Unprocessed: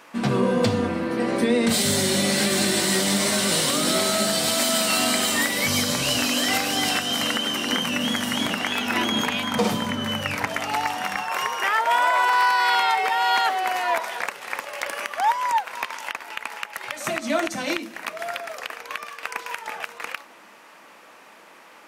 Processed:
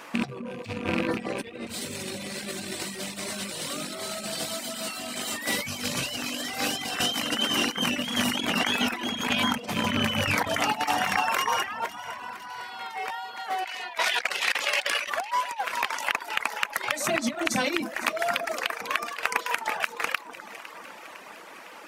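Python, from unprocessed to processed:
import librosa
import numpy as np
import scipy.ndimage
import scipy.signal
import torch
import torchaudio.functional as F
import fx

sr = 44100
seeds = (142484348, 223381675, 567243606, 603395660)

y = fx.rattle_buzz(x, sr, strikes_db=-29.0, level_db=-17.0)
y = fx.weighting(y, sr, curve='D', at=(13.65, 15.1))
y = fx.over_compress(y, sr, threshold_db=-27.0, ratio=-0.5)
y = fx.echo_alternate(y, sr, ms=253, hz=1600.0, feedback_pct=75, wet_db=-12)
y = fx.dereverb_blind(y, sr, rt60_s=0.7)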